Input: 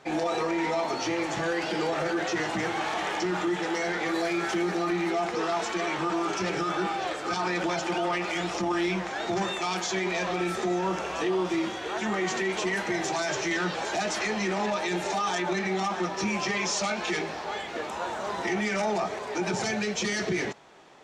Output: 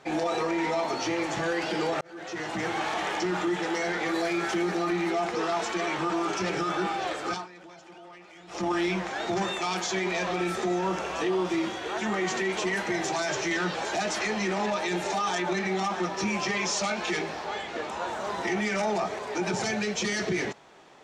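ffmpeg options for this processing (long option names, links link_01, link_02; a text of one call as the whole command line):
ffmpeg -i in.wav -filter_complex "[0:a]asettb=1/sr,asplit=3[link_01][link_02][link_03];[link_01]atrim=end=17.474[link_04];[link_02]atrim=start=17.47:end=18.08,asetpts=PTS-STARTPTS,afade=type=in:duration=0.004:curve=qsin,afade=type=out:start_time=0.606:duration=0.004:curve=qsin,lowpass=8900[link_05];[link_03]atrim=start=18.076[link_06];[link_04][link_05]acrossfade=duration=0.004:curve1=hsin:curve2=qsin[link_07];[link_07][link_06]acrossfade=duration=0.004:curve1=qsin:curve2=hsin,asplit=4[link_08][link_09][link_10][link_11];[link_08]atrim=end=2.01,asetpts=PTS-STARTPTS,afade=type=out:start_time=2.006:duration=0.004:curve=hsin[link_12];[link_09]atrim=start=2.01:end=7.47,asetpts=PTS-STARTPTS,afade=type=in:duration=0.72,afade=type=out:start_time=5.28:duration=0.18:silence=0.1[link_13];[link_10]atrim=start=7.47:end=8.47,asetpts=PTS-STARTPTS,volume=-20dB[link_14];[link_11]atrim=start=8.47,asetpts=PTS-STARTPTS,afade=type=in:duration=0.18:silence=0.1[link_15];[link_12][link_13][link_14][link_15]concat=n=4:v=0:a=1" out.wav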